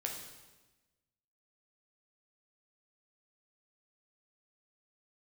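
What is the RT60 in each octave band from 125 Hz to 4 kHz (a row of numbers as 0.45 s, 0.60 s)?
1.4 s, 1.4 s, 1.2 s, 1.1 s, 1.1 s, 1.1 s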